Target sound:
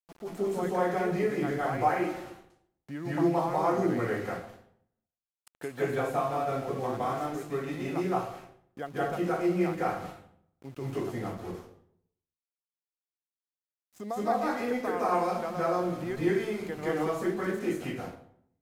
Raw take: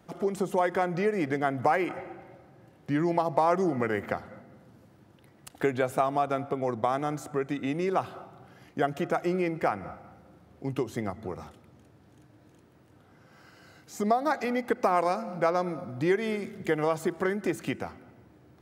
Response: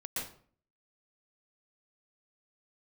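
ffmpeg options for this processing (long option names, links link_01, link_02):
-filter_complex "[0:a]asettb=1/sr,asplit=3[link_01][link_02][link_03];[link_01]atrim=end=11.324[link_04];[link_02]atrim=start=11.32:end=13.96,asetpts=PTS-STARTPTS,afade=type=in:duration=0.004:curve=qsin,afade=type=out:start_time=2.636:duration=0.004:curve=qsin,equalizer=frequency=1700:width_type=o:width=2.2:gain=-11[link_05];[link_03]atrim=start=13.956[link_06];[link_04][link_05]acrossfade=duration=0.004:curve1=hsin:curve2=qsin[link_07];[link_07][link_06]acrossfade=duration=0.004:curve1=qsin:curve2=hsin,aeval=exprs='val(0)*gte(abs(val(0)),0.0106)':channel_layout=same[link_08];[1:a]atrim=start_sample=2205,asetrate=30870,aresample=44100[link_09];[link_08][link_09]afir=irnorm=-1:irlink=0,volume=-7dB"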